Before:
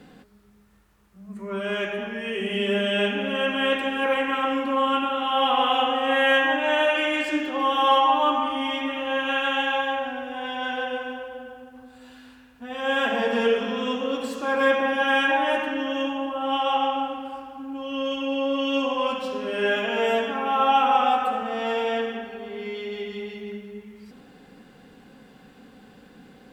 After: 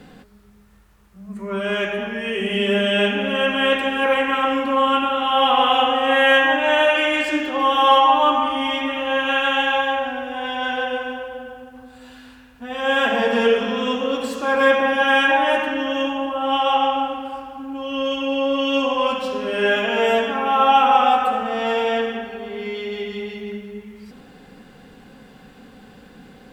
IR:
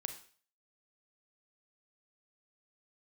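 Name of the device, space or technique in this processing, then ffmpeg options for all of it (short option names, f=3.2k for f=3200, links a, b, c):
low shelf boost with a cut just above: -af "lowshelf=f=65:g=6.5,equalizer=f=300:t=o:w=0.71:g=-2.5,volume=5dB"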